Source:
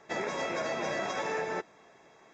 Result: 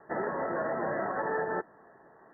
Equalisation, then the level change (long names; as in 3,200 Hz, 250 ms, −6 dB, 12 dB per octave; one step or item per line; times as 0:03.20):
Chebyshev low-pass filter 1,900 Hz, order 10
+2.5 dB